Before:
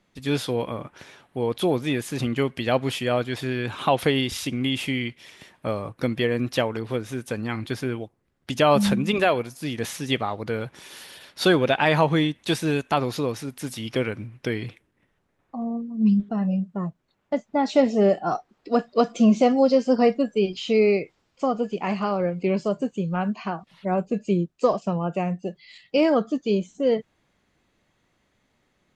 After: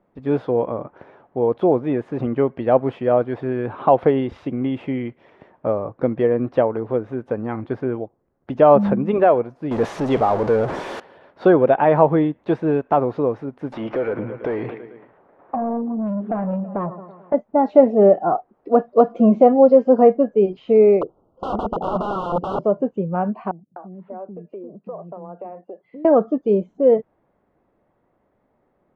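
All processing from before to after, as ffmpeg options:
-filter_complex "[0:a]asettb=1/sr,asplit=3[s0][s1][s2];[s0]atrim=end=9.714[s3];[s1]atrim=start=9.71:end=11,asetpts=PTS-STARTPTS,afade=t=in:d=0.004:c=qsin,afade=t=out:st=1.286:d=0.004:c=qsin,aeval=exprs='val(0)+0.5*0.0841*sgn(val(0))':c=same,bass=f=250:g=-2,treble=f=4000:g=15[s4];[s2]atrim=start=10.996[s5];[s3][s4]acrossfade=d=0.004:c1=hsin:c2=qsin[s6];[s6][s5]acrossfade=d=0.004:c1=qsin:c2=hsin,asettb=1/sr,asplit=3[s7][s8][s9];[s7]atrim=end=13.724[s10];[s8]atrim=start=13.72:end=17.34,asetpts=PTS-STARTPTS,afade=t=in:d=0.004:c=qsin,afade=t=out:st=3.616:d=0.004:c=qsin,aecho=1:1:110|220|330|440:0.075|0.0435|0.0252|0.0146,atrim=end_sample=159642,asplit=2[s11][s12];[s12]highpass=f=720:p=1,volume=20,asoftclip=type=tanh:threshold=0.299[s13];[s11][s13]amix=inputs=2:normalize=0,lowpass=f=2600:p=1,volume=0.501,acompressor=threshold=0.0562:ratio=5:attack=3.2:release=140:knee=1:detection=peak[s14];[s9]atrim=start=17.336[s15];[s10][s14]acrossfade=d=0.004:c1=hsin:c2=qsin[s16];[s16][s15]acrossfade=d=0.004:c1=qsin:c2=hsin,asettb=1/sr,asplit=3[s17][s18][s19];[s17]atrim=end=21.014[s20];[s18]atrim=start=21.01:end=22.64,asetpts=PTS-STARTPTS,afade=t=in:d=0.004:c=qsin,afade=t=out:st=1.626:d=0.004:c=qsin,tiltshelf=f=1500:g=8,aeval=exprs='(mod(9.44*val(0)+1,2)-1)/9.44':c=same,asuperstop=centerf=2000:order=20:qfactor=1.5[s21];[s19]atrim=start=22.636[s22];[s20][s21]acrossfade=d=0.004:c1=hsin:c2=qsin[s23];[s23][s22]acrossfade=d=0.004:c1=qsin:c2=hsin,asettb=1/sr,asplit=3[s24][s25][s26];[s24]atrim=end=23.514[s27];[s25]atrim=start=23.51:end=26.05,asetpts=PTS-STARTPTS,afade=t=in:d=0.004:c=qsin,afade=t=out:st=2.536:d=0.004:c=qsin,highpass=150,lowpass=2500,acrossover=split=290[s28][s29];[s29]adelay=250[s30];[s28][s30]amix=inputs=2:normalize=0,atrim=end_sample=112014,acompressor=threshold=0.0112:ratio=4:attack=3.2:release=140:knee=1:detection=peak[s31];[s26]atrim=start=26.046[s32];[s27][s31]acrossfade=d=0.004:c1=hsin:c2=qsin[s33];[s33][s32]acrossfade=d=0.004:c1=qsin:c2=hsin,lowpass=1200,equalizer=f=590:t=o:w=2.4:g=9.5,volume=0.841"

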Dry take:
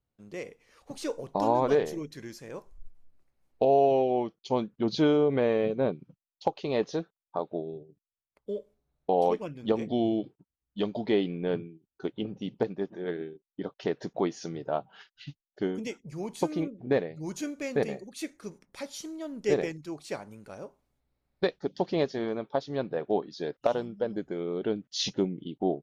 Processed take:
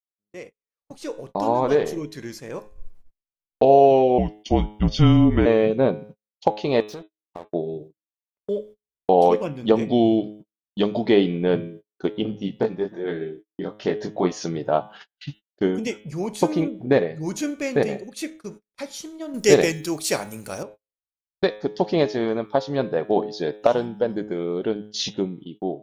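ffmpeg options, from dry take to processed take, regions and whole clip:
-filter_complex "[0:a]asettb=1/sr,asplit=3[s0][s1][s2];[s0]atrim=end=4.184[s3];[s1]atrim=start=4.18:end=5.46,asetpts=PTS-STARTPTS,afade=t=in:d=0.004:c=qsin,afade=t=out:st=1.276:d=0.004:c=qsin,afreqshift=-170,asuperstop=centerf=4000:order=20:qfactor=7.5[s4];[s2]atrim=start=5.456[s5];[s3][s4]acrossfade=d=0.004:c1=hsin:c2=qsin[s6];[s6][s5]acrossfade=d=0.004:c1=qsin:c2=hsin,asettb=1/sr,asplit=3[s7][s8][s9];[s7]atrim=end=6.804[s10];[s8]atrim=start=6.8:end=7.53,asetpts=PTS-STARTPTS,afade=t=in:d=0.004:c=qsin,afade=t=out:st=0.726:d=0.004:c=qsin,acompressor=threshold=0.01:ratio=4:attack=3.2:release=140:knee=1:detection=peak,aeval=exprs='sgn(val(0))*max(abs(val(0))-0.00282,0)':c=same[s11];[s9]atrim=start=7.526[s12];[s10][s11]acrossfade=d=0.004:c1=hsin:c2=qsin[s13];[s13][s12]acrossfade=d=0.004:c1=qsin:c2=hsin,asettb=1/sr,asplit=3[s14][s15][s16];[s14]atrim=end=12.314[s17];[s15]atrim=start=12.31:end=14.32,asetpts=PTS-STARTPTS,afade=t=in:d=0.004:c=qsin,afade=t=out:st=2.006:d=0.004:c=qsin,lowshelf=f=63:g=3,flanger=delay=19:depth=4:speed=1.2[s18];[s16]atrim=start=14.316[s19];[s17][s18]acrossfade=d=0.004:c1=hsin:c2=qsin[s20];[s20][s19]acrossfade=d=0.004:c1=qsin:c2=hsin,asettb=1/sr,asplit=3[s21][s22][s23];[s21]atrim=end=19.344[s24];[s22]atrim=start=19.34:end=20.63,asetpts=PTS-STARTPTS,afade=t=in:d=0.004:c=qsin,afade=t=out:st=1.286:d=0.004:c=qsin,aemphasis=mode=production:type=75kf,acontrast=61[s25];[s23]atrim=start=20.626[s26];[s24][s25]acrossfade=d=0.004:c1=hsin:c2=qsin[s27];[s27][s26]acrossfade=d=0.004:c1=qsin:c2=hsin,bandreject=f=105.6:t=h:w=4,bandreject=f=211.2:t=h:w=4,bandreject=f=316.8:t=h:w=4,bandreject=f=422.4:t=h:w=4,bandreject=f=528:t=h:w=4,bandreject=f=633.6:t=h:w=4,bandreject=f=739.2:t=h:w=4,bandreject=f=844.8:t=h:w=4,bandreject=f=950.4:t=h:w=4,bandreject=f=1056:t=h:w=4,bandreject=f=1161.6:t=h:w=4,bandreject=f=1267.2:t=h:w=4,bandreject=f=1372.8:t=h:w=4,bandreject=f=1478.4:t=h:w=4,bandreject=f=1584:t=h:w=4,bandreject=f=1689.6:t=h:w=4,bandreject=f=1795.2:t=h:w=4,bandreject=f=1900.8:t=h:w=4,bandreject=f=2006.4:t=h:w=4,bandreject=f=2112:t=h:w=4,bandreject=f=2217.6:t=h:w=4,bandreject=f=2323.2:t=h:w=4,bandreject=f=2428.8:t=h:w=4,bandreject=f=2534.4:t=h:w=4,bandreject=f=2640:t=h:w=4,bandreject=f=2745.6:t=h:w=4,bandreject=f=2851.2:t=h:w=4,bandreject=f=2956.8:t=h:w=4,bandreject=f=3062.4:t=h:w=4,bandreject=f=3168:t=h:w=4,bandreject=f=3273.6:t=h:w=4,bandreject=f=3379.2:t=h:w=4,bandreject=f=3484.8:t=h:w=4,bandreject=f=3590.4:t=h:w=4,bandreject=f=3696:t=h:w=4,bandreject=f=3801.6:t=h:w=4,bandreject=f=3907.2:t=h:w=4,bandreject=f=4012.8:t=h:w=4,dynaudnorm=f=390:g=9:m=3.16,agate=range=0.0112:threshold=0.01:ratio=16:detection=peak"

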